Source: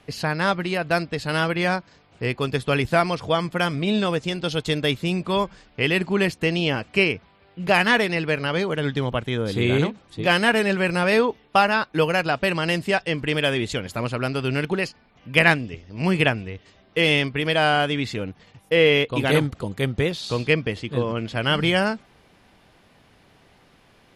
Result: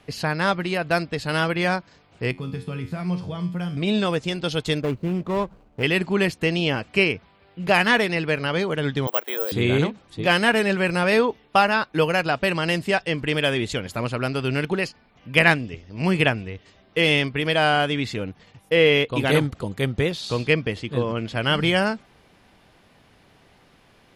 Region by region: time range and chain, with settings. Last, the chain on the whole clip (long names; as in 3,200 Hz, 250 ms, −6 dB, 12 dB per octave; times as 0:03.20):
0:02.31–0:03.77: parametric band 150 Hz +14.5 dB 1.4 octaves + downward compressor 4 to 1, threshold −16 dBFS + tuned comb filter 90 Hz, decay 0.46 s, mix 80%
0:04.81–0:05.83: running median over 25 samples + high-shelf EQ 3,400 Hz −8.5 dB
0:09.07–0:09.52: high-pass filter 410 Hz 24 dB per octave + high-shelf EQ 5,200 Hz −9 dB + bad sample-rate conversion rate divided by 2×, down none, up zero stuff
whole clip: no processing